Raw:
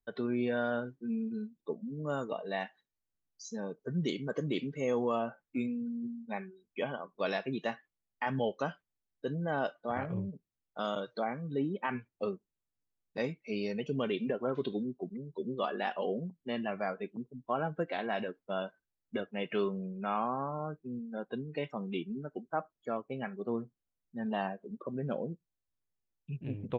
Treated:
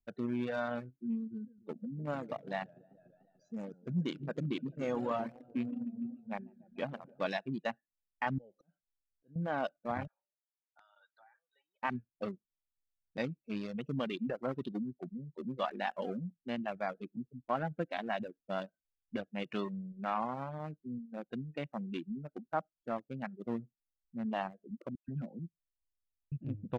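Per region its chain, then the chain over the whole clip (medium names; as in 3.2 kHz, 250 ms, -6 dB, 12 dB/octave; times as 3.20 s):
1.29–7.29 s: treble shelf 3.8 kHz -6 dB + modulated delay 147 ms, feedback 64%, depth 165 cents, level -11.5 dB
8.38–9.36 s: compression 4:1, threshold -45 dBFS + slow attack 266 ms
10.07–11.83 s: elliptic high-pass 920 Hz, stop band 70 dB + band-stop 2.7 kHz, Q 7.4 + compression 20:1, threshold -44 dBFS
24.95–26.32 s: peaking EQ 510 Hz -13 dB 0.83 oct + phase dispersion lows, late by 130 ms, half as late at 2.5 kHz
whole clip: local Wiener filter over 41 samples; reverb removal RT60 0.77 s; peaking EQ 420 Hz -9.5 dB 0.38 oct; trim +1 dB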